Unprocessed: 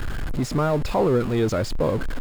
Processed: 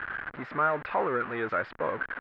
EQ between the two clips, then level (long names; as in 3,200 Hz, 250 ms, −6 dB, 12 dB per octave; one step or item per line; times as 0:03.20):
resonant band-pass 1,600 Hz, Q 2.3
high-frequency loss of the air 430 metres
+9.0 dB